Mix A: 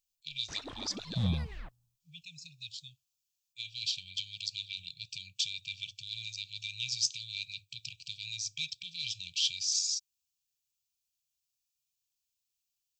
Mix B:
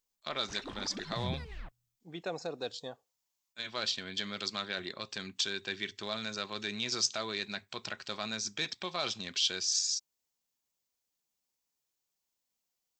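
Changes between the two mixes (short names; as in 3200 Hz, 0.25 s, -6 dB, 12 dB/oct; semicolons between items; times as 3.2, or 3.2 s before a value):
speech: remove brick-wall FIR band-stop 160–2300 Hz; second sound -8.0 dB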